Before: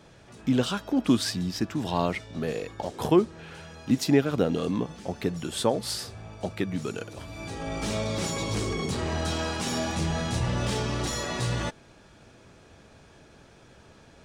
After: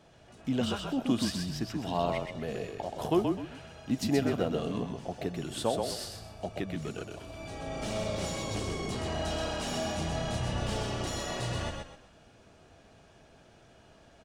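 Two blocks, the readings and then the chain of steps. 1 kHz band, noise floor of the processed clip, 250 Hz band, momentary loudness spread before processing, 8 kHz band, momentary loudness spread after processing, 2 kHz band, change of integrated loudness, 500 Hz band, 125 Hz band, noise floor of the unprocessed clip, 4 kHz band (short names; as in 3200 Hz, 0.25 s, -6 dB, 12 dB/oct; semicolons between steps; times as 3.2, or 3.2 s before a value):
-3.0 dB, -58 dBFS, -5.5 dB, 12 LU, -5.5 dB, 11 LU, -5.5 dB, -5.0 dB, -4.0 dB, -5.5 dB, -54 dBFS, -4.0 dB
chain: small resonant body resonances 690/2900 Hz, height 8 dB, ringing for 25 ms; frequency-shifting echo 0.127 s, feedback 31%, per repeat -31 Hz, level -4 dB; gain -7 dB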